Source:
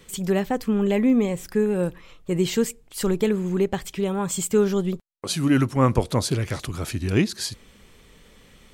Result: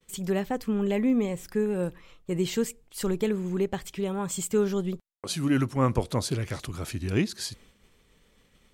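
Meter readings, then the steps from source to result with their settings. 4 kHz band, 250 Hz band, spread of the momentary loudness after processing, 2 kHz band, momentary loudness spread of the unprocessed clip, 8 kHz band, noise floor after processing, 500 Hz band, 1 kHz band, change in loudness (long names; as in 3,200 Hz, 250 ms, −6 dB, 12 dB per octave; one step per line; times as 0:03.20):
−5.0 dB, −5.0 dB, 9 LU, −5.0 dB, 9 LU, −5.0 dB, −64 dBFS, −5.0 dB, −5.0 dB, −5.0 dB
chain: downward expander −45 dBFS
level −5 dB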